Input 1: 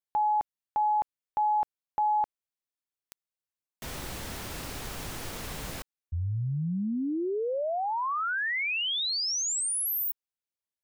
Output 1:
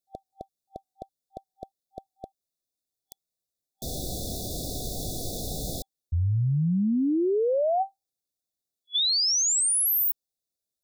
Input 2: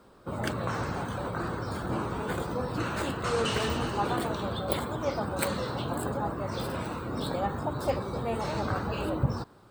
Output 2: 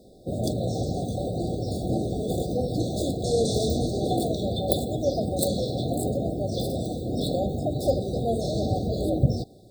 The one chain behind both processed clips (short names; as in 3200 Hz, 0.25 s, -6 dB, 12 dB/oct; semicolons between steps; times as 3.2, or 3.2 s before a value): FFT band-reject 780–3400 Hz; gain +6 dB